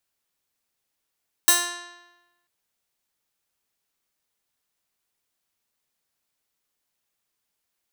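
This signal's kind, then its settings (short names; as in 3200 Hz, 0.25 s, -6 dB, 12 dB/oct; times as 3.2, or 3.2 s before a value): plucked string F4, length 0.99 s, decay 1.09 s, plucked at 0.15, bright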